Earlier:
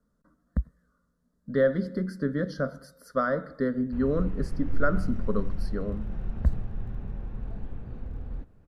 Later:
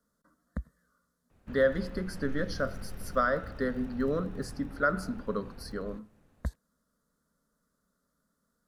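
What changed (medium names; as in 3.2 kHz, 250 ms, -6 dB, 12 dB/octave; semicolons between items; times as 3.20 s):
background: entry -2.45 s; master: add tilt EQ +2.5 dB/octave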